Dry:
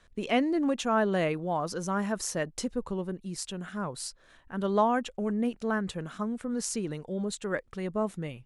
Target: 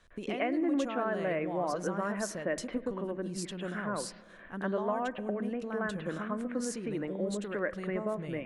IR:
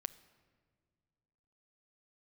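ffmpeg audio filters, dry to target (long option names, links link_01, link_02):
-filter_complex "[0:a]acompressor=threshold=-34dB:ratio=6,asplit=2[link_01][link_02];[link_02]highpass=frequency=230:width=0.5412,highpass=frequency=230:width=1.3066,equalizer=frequency=240:width_type=q:width=4:gain=-6,equalizer=frequency=420:width_type=q:width=4:gain=-7,equalizer=frequency=850:width_type=q:width=4:gain=-9,equalizer=frequency=1300:width_type=q:width=4:gain=-6,lowpass=frequency=2200:width=0.5412,lowpass=frequency=2200:width=1.3066[link_03];[1:a]atrim=start_sample=2205,lowpass=3700,adelay=105[link_04];[link_03][link_04]afir=irnorm=-1:irlink=0,volume=14dB[link_05];[link_01][link_05]amix=inputs=2:normalize=0,volume=-2.5dB"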